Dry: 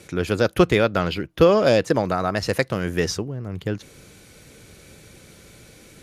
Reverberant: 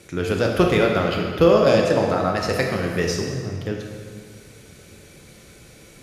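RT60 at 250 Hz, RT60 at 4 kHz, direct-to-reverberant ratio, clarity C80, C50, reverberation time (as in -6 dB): 2.0 s, 1.5 s, 0.0 dB, 4.0 dB, 2.5 dB, 2.0 s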